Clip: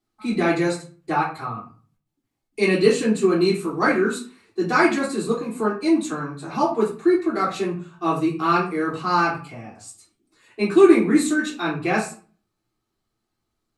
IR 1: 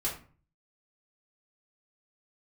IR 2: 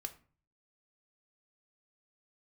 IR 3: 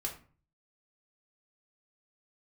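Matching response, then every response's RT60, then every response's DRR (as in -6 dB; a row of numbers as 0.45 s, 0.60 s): 1; 0.40 s, 0.40 s, 0.40 s; -6.5 dB, 7.0 dB, -0.5 dB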